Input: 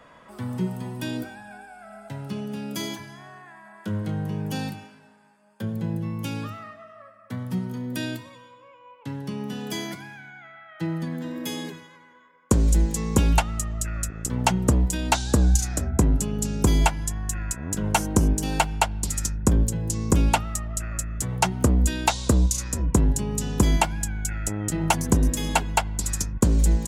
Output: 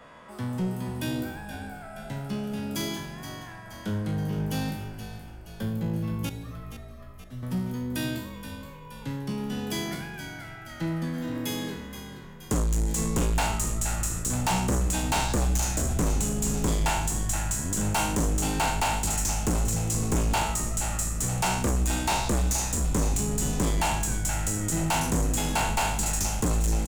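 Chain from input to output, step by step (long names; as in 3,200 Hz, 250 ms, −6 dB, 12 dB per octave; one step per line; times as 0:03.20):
peak hold with a decay on every bin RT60 0.55 s
0:06.29–0:07.43: tuned comb filter 130 Hz, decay 0.27 s, harmonics all, mix 100%
soft clipping −22 dBFS, distortion −7 dB
echo with shifted repeats 474 ms, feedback 56%, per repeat −47 Hz, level −10.5 dB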